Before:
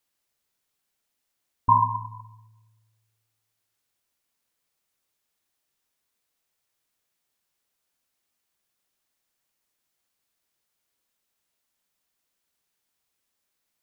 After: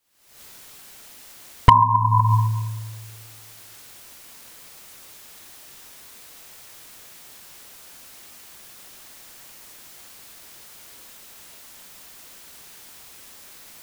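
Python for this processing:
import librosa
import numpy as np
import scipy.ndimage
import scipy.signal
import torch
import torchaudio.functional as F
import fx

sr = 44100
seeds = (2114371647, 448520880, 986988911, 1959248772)

y = fx.recorder_agc(x, sr, target_db=-11.5, rise_db_per_s=73.0, max_gain_db=30)
y = np.clip(y, -10.0 ** (-6.0 / 20.0), 10.0 ** (-6.0 / 20.0))
y = F.gain(torch.from_numpy(y), 4.0).numpy()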